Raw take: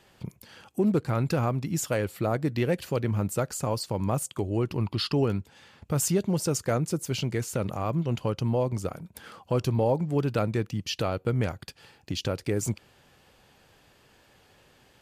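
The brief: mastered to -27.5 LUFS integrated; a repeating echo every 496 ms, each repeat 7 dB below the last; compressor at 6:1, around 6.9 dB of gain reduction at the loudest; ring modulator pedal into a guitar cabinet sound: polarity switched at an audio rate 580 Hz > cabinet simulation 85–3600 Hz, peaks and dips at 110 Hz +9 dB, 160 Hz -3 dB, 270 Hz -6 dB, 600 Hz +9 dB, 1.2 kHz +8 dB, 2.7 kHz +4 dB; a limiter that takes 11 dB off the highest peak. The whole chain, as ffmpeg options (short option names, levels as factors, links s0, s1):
-af "acompressor=threshold=0.0398:ratio=6,alimiter=level_in=2:limit=0.0631:level=0:latency=1,volume=0.501,aecho=1:1:496|992|1488|1984|2480:0.447|0.201|0.0905|0.0407|0.0183,aeval=exprs='val(0)*sgn(sin(2*PI*580*n/s))':c=same,highpass=85,equalizer=f=110:t=q:w=4:g=9,equalizer=f=160:t=q:w=4:g=-3,equalizer=f=270:t=q:w=4:g=-6,equalizer=f=600:t=q:w=4:g=9,equalizer=f=1200:t=q:w=4:g=8,equalizer=f=2700:t=q:w=4:g=4,lowpass=f=3600:w=0.5412,lowpass=f=3600:w=1.3066,volume=2.66"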